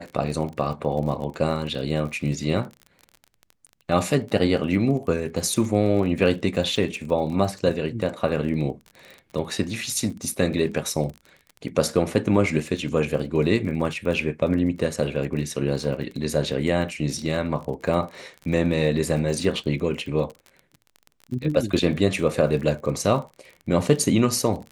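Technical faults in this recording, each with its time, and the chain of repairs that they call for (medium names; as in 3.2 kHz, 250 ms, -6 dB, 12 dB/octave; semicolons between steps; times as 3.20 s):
crackle 34 per s -32 dBFS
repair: de-click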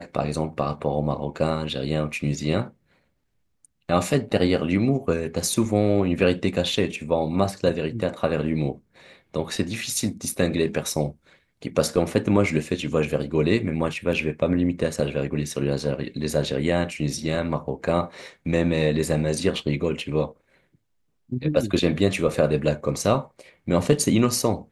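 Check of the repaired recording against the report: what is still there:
nothing left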